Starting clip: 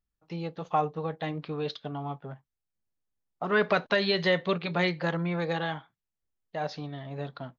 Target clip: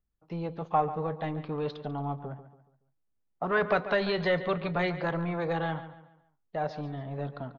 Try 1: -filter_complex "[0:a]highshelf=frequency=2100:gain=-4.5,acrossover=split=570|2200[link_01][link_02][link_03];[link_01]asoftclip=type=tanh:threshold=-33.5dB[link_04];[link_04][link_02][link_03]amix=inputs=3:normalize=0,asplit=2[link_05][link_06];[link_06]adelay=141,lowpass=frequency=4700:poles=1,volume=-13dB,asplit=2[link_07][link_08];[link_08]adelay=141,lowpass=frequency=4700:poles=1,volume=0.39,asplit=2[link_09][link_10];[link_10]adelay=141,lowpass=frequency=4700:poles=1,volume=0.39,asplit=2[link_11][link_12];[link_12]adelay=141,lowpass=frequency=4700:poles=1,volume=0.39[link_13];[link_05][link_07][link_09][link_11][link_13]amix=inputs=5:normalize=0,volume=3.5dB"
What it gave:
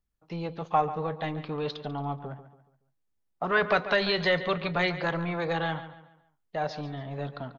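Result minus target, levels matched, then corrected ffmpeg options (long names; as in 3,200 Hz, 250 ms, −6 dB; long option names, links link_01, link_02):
4,000 Hz band +5.5 dB
-filter_complex "[0:a]highshelf=frequency=2100:gain=-15,acrossover=split=570|2200[link_01][link_02][link_03];[link_01]asoftclip=type=tanh:threshold=-33.5dB[link_04];[link_04][link_02][link_03]amix=inputs=3:normalize=0,asplit=2[link_05][link_06];[link_06]adelay=141,lowpass=frequency=4700:poles=1,volume=-13dB,asplit=2[link_07][link_08];[link_08]adelay=141,lowpass=frequency=4700:poles=1,volume=0.39,asplit=2[link_09][link_10];[link_10]adelay=141,lowpass=frequency=4700:poles=1,volume=0.39,asplit=2[link_11][link_12];[link_12]adelay=141,lowpass=frequency=4700:poles=1,volume=0.39[link_13];[link_05][link_07][link_09][link_11][link_13]amix=inputs=5:normalize=0,volume=3.5dB"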